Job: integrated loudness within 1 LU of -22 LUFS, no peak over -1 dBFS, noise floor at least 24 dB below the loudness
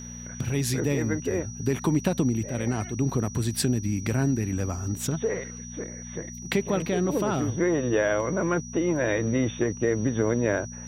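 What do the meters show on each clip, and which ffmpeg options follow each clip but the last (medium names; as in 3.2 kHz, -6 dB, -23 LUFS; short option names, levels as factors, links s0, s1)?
hum 60 Hz; highest harmonic 240 Hz; hum level -38 dBFS; steady tone 5.8 kHz; tone level -41 dBFS; loudness -27.0 LUFS; peak level -11.0 dBFS; loudness target -22.0 LUFS
-> -af "bandreject=f=60:t=h:w=4,bandreject=f=120:t=h:w=4,bandreject=f=180:t=h:w=4,bandreject=f=240:t=h:w=4"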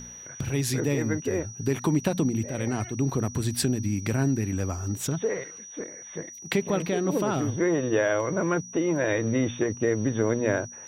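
hum not found; steady tone 5.8 kHz; tone level -41 dBFS
-> -af "bandreject=f=5800:w=30"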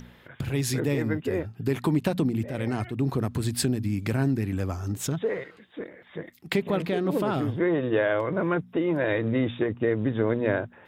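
steady tone not found; loudness -27.0 LUFS; peak level -10.5 dBFS; loudness target -22.0 LUFS
-> -af "volume=1.78"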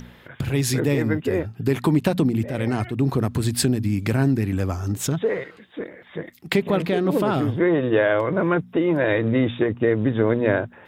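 loudness -22.0 LUFS; peak level -5.5 dBFS; noise floor -49 dBFS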